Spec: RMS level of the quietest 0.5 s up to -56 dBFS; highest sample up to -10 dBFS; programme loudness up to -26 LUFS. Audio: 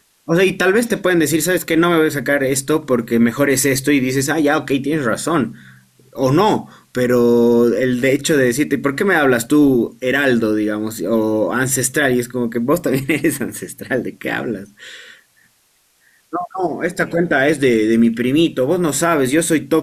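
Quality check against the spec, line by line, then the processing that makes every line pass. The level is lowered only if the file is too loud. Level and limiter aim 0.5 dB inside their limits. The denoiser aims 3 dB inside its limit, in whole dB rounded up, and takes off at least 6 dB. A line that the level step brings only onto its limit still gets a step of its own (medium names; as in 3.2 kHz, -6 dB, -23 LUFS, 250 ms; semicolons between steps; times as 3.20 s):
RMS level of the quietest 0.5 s -59 dBFS: pass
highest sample -4.5 dBFS: fail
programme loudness -16.5 LUFS: fail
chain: trim -10 dB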